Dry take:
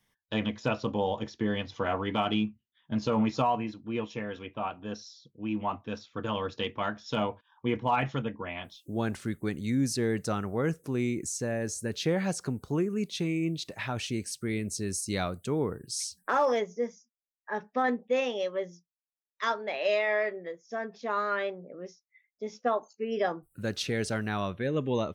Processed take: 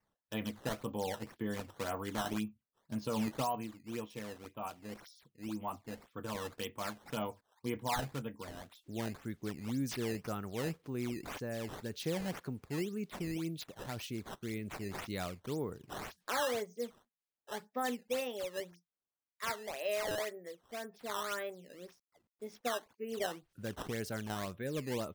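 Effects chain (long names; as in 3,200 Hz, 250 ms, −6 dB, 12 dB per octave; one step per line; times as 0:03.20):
0:21.67–0:22.59: variable-slope delta modulation 64 kbit/s
sample-and-hold swept by an LFO 11×, swing 160% 1.9 Hz
level −8.5 dB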